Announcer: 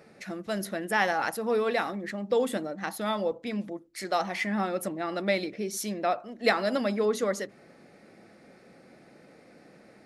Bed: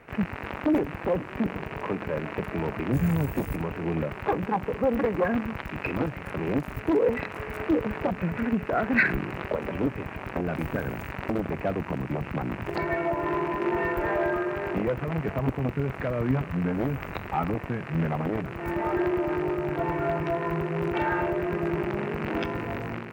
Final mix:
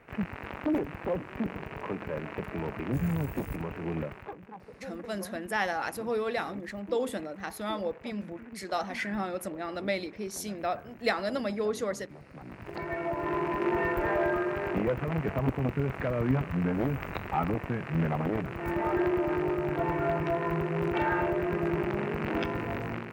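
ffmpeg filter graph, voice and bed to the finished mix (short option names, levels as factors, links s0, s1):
-filter_complex "[0:a]adelay=4600,volume=0.631[s0];[1:a]volume=4.47,afade=t=out:st=4.01:d=0.33:silence=0.188365,afade=t=in:st=12.31:d=1.26:silence=0.125893[s1];[s0][s1]amix=inputs=2:normalize=0"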